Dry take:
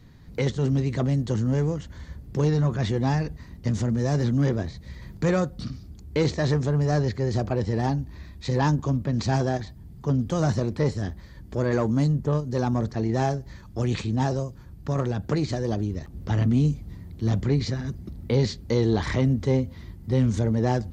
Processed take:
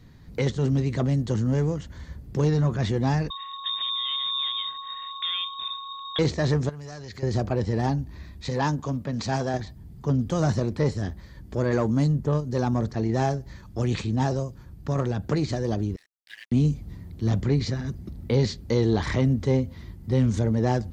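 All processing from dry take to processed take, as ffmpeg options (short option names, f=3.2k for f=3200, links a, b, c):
-filter_complex "[0:a]asettb=1/sr,asplit=3[a][b][c];[a]atrim=end=3.304[d];[b]atrim=start=3.3:end=6.19,asetpts=PTS-STARTPTS,afade=t=in:d=0.004:c=qsin,afade=t=out:st=2.886:d=0.004:c=qsin,lowpass=f=3.2k:t=q:w=0.5098,lowpass=f=3.2k:t=q:w=0.6013,lowpass=f=3.2k:t=q:w=0.9,lowpass=f=3.2k:t=q:w=2.563,afreqshift=-3800,acompressor=threshold=-27dB:ratio=3:attack=3.2:release=140:knee=1:detection=peak,aeval=exprs='val(0)+0.0158*sin(2*PI*1100*n/s)':c=same[e];[c]atrim=start=6.186[f];[d][e]acrossfade=d=0.004:c1=hsin:c2=qsin[g];[g][f]acrossfade=d=0.004:c1=qsin:c2=hsin,asettb=1/sr,asplit=3[h][i][j];[h]atrim=end=6.694[k];[i]atrim=start=6.69:end=7.23,asetpts=PTS-STARTPTS,afade=t=in:d=0.004:c=qsin,afade=t=out:st=0.536:d=0.004:c=qsin,acompressor=threshold=-30dB:ratio=8:attack=3.2:release=140:knee=1:detection=peak,tiltshelf=f=1.3k:g=-6.5[l];[j]atrim=start=7.226[m];[k][l]acrossfade=d=0.004:c1=hsin:c2=qsin[n];[n][m]acrossfade=d=0.004:c1=qsin:c2=hsin,asettb=1/sr,asplit=3[o][p][q];[o]atrim=end=8.494[r];[p]atrim=start=8.49:end=9.54,asetpts=PTS-STARTPTS,afade=t=in:d=0.004:c=qsin,afade=t=out:st=1.046:d=0.004:c=qsin,lowshelf=f=140:g=-10,bandreject=f=350:w=6.1[s];[q]atrim=start=9.536[t];[r][s]acrossfade=d=0.004:c1=hsin:c2=qsin[u];[u][t]acrossfade=d=0.004:c1=qsin:c2=hsin,asettb=1/sr,asplit=3[v][w][x];[v]atrim=end=15.964[y];[w]atrim=start=15.96:end=16.52,asetpts=PTS-STARTPTS,afade=t=in:d=0.004:c=qsin,afade=t=out:st=0.556:d=0.004:c=qsin,asuperpass=centerf=2900:order=20:qfactor=0.83,aeval=exprs='sgn(val(0))*max(abs(val(0))-0.00224,0)':c=same[z];[x]atrim=start=16.516[aa];[y][z]acrossfade=d=0.004:c1=hsin:c2=qsin[ab];[ab][aa]acrossfade=d=0.004:c1=qsin:c2=hsin"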